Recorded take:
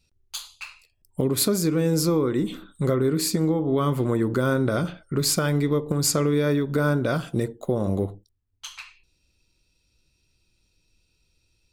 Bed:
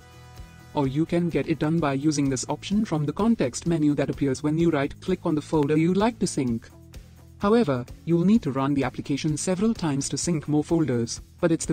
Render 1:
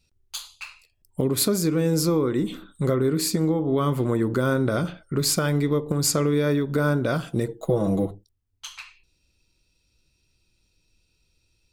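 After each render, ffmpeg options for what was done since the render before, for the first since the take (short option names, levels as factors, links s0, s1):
-filter_complex "[0:a]asettb=1/sr,asplit=3[s0][s1][s2];[s0]atrim=end=7.484[s3];[s1]atrim=start=7.48:end=8.11,asetpts=PTS-STARTPTS,afade=t=in:d=0.004:c=qsin,afade=t=out:st=0.626:d=0.004:c=qsin,aecho=1:1:6.2:0.94,atrim=end_sample=27783[s4];[s2]atrim=start=8.106[s5];[s3][s4]acrossfade=d=0.004:c1=hsin:c2=qsin[s6];[s6][s5]acrossfade=d=0.004:c1=qsin:c2=hsin"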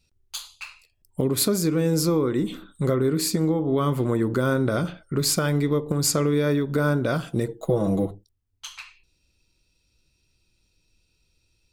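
-af anull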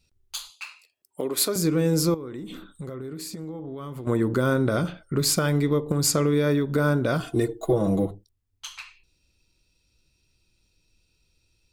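-filter_complex "[0:a]asettb=1/sr,asplit=3[s0][s1][s2];[s0]atrim=end=0.504[s3];[s1]atrim=start=0.5:end=1.56,asetpts=PTS-STARTPTS,afade=t=in:d=0.004:c=qsin,afade=t=out:st=1.056:d=0.004:c=qsin,highpass=410[s4];[s2]atrim=start=1.556[s5];[s3][s4]acrossfade=d=0.004:c1=hsin:c2=qsin[s6];[s6][s5]acrossfade=d=0.004:c1=qsin:c2=hsin,asettb=1/sr,asplit=3[s7][s8][s9];[s7]atrim=end=2.144[s10];[s8]atrim=start=2.14:end=4.07,asetpts=PTS-STARTPTS,afade=t=in:d=0.004:c=qsin,afade=t=out:st=1.926:d=0.004:c=qsin,acompressor=threshold=0.0224:ratio=6:attack=3.2:release=140:knee=1:detection=peak[s11];[s9]atrim=start=4.066[s12];[s10][s11]acrossfade=d=0.004:c1=hsin:c2=qsin[s13];[s13][s12]acrossfade=d=0.004:c1=qsin:c2=hsin,asettb=1/sr,asplit=3[s14][s15][s16];[s14]atrim=end=7.204[s17];[s15]atrim=start=7.2:end=7.73,asetpts=PTS-STARTPTS,afade=t=in:d=0.004:c=qsin,afade=t=out:st=0.526:d=0.004:c=qsin,aecho=1:1:2.8:0.81,atrim=end_sample=23373[s18];[s16]atrim=start=7.726[s19];[s17][s18]acrossfade=d=0.004:c1=hsin:c2=qsin[s20];[s20][s19]acrossfade=d=0.004:c1=qsin:c2=hsin"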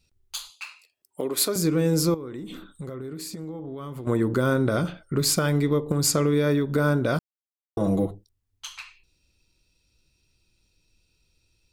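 -filter_complex "[0:a]asplit=3[s0][s1][s2];[s0]atrim=end=7.19,asetpts=PTS-STARTPTS,afade=t=out:st=7.186:d=0.004:c=hsin[s3];[s1]atrim=start=7.19:end=7.77,asetpts=PTS-STARTPTS,volume=0[s4];[s2]atrim=start=7.77,asetpts=PTS-STARTPTS,afade=t=in:d=0.004:c=hsin[s5];[s3][s4][s5]concat=n=3:v=0:a=1"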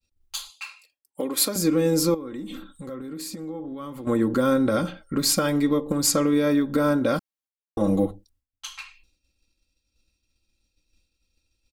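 -af "agate=range=0.0224:threshold=0.001:ratio=3:detection=peak,aecho=1:1:3.7:0.63"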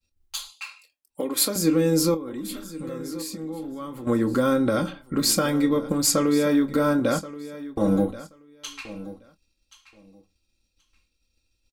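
-filter_complex "[0:a]asplit=2[s0][s1];[s1]adelay=25,volume=0.266[s2];[s0][s2]amix=inputs=2:normalize=0,aecho=1:1:1078|2156:0.158|0.0254"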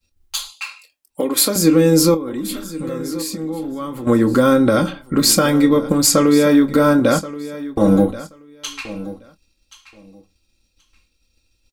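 -af "volume=2.51,alimiter=limit=0.794:level=0:latency=1"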